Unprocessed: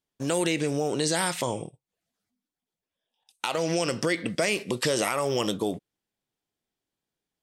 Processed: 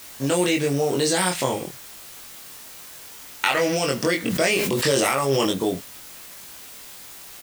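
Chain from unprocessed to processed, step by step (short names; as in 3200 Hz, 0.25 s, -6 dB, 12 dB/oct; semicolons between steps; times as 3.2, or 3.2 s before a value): 1.44–3.67 bell 1900 Hz +14.5 dB 0.67 oct; in parallel at -6.5 dB: requantised 6-bit, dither triangular; on the sum: doubler 22 ms -2 dB; 4.2–5.47 sustainer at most 27 dB/s; gain -1 dB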